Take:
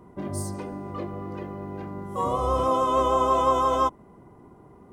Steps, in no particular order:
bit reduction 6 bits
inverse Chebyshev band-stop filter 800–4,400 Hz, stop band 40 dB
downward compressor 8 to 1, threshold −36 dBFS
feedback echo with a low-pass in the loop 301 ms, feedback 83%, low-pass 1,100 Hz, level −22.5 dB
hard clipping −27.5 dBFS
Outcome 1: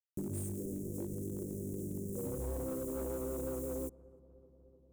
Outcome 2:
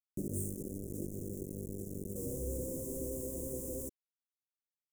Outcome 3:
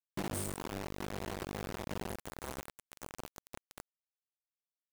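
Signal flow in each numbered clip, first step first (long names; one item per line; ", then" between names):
bit reduction, then inverse Chebyshev band-stop filter, then hard clipping, then downward compressor, then feedback echo with a low-pass in the loop
hard clipping, then downward compressor, then feedback echo with a low-pass in the loop, then bit reduction, then inverse Chebyshev band-stop filter
feedback echo with a low-pass in the loop, then hard clipping, then downward compressor, then inverse Chebyshev band-stop filter, then bit reduction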